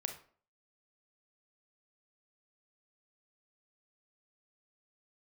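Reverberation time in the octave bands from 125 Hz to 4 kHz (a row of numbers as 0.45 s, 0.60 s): 0.50 s, 0.50 s, 0.50 s, 0.45 s, 0.40 s, 0.30 s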